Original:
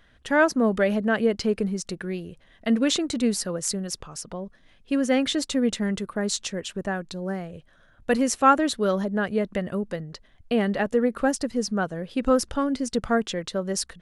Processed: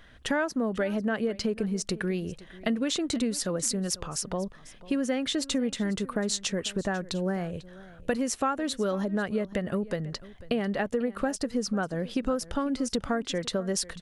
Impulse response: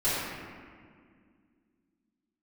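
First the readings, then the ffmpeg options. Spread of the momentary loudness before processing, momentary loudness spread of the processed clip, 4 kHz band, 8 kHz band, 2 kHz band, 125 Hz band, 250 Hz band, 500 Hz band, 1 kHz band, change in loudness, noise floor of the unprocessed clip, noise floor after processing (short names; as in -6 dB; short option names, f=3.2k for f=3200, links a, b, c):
12 LU, 5 LU, -2.0 dB, -1.5 dB, -5.5 dB, -1.5 dB, -4.0 dB, -5.0 dB, -8.0 dB, -4.5 dB, -58 dBFS, -51 dBFS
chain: -filter_complex "[0:a]acompressor=threshold=-30dB:ratio=6,asplit=2[a][b];[b]aecho=0:1:495:0.112[c];[a][c]amix=inputs=2:normalize=0,volume=4.5dB"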